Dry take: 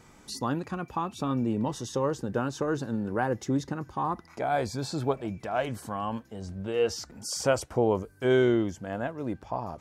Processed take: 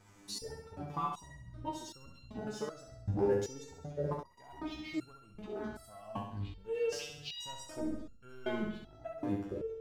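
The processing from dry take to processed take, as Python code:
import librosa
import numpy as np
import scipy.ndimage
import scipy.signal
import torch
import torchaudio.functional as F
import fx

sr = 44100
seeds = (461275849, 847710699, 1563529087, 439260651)

p1 = fx.pitch_trill(x, sr, semitones=-11.0, every_ms=411)
p2 = fx.leveller(p1, sr, passes=1)
p3 = p2 + fx.room_flutter(p2, sr, wall_m=11.5, rt60_s=0.74, dry=0)
p4 = fx.resonator_held(p3, sr, hz=2.6, low_hz=100.0, high_hz=1400.0)
y = p4 * librosa.db_to_amplitude(2.5)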